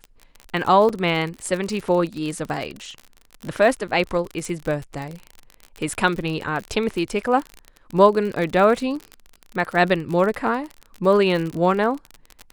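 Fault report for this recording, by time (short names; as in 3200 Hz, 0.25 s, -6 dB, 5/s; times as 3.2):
crackle 45/s -26 dBFS
0.89–0.9 gap 5.1 ms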